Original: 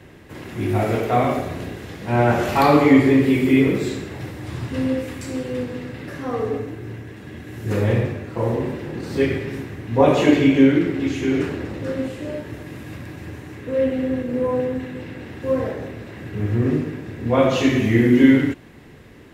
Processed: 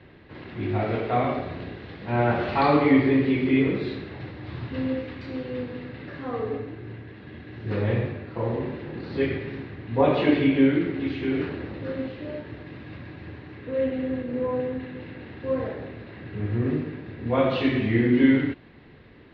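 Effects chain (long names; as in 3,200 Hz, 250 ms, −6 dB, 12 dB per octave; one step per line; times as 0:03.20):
elliptic low-pass filter 4,300 Hz, stop band 60 dB
level −4.5 dB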